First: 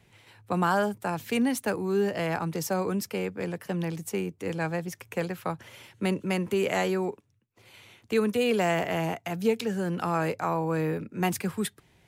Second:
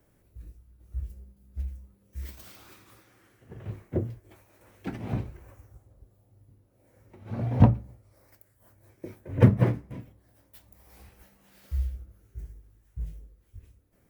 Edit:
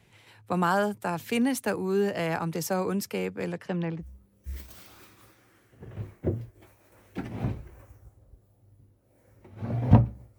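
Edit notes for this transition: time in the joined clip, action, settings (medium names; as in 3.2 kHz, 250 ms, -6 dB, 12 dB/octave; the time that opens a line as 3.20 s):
first
3.52–4.09 s: low-pass 8.9 kHz -> 1.2 kHz
4.04 s: go over to second from 1.73 s, crossfade 0.10 s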